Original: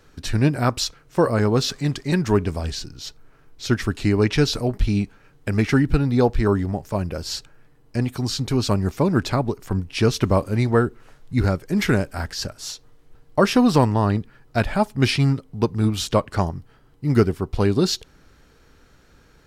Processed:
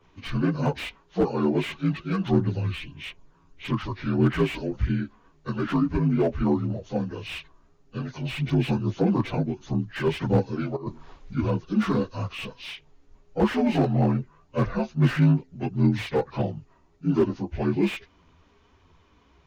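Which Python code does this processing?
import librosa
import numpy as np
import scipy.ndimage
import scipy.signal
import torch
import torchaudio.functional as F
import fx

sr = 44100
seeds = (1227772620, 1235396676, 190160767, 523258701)

y = fx.partial_stretch(x, sr, pct=80)
y = fx.chorus_voices(y, sr, voices=2, hz=0.82, base_ms=12, depth_ms=2.3, mix_pct=60)
y = fx.over_compress(y, sr, threshold_db=-32.0, ratio=-1.0, at=(10.75, 11.34), fade=0.02)
y = fx.slew_limit(y, sr, full_power_hz=66.0)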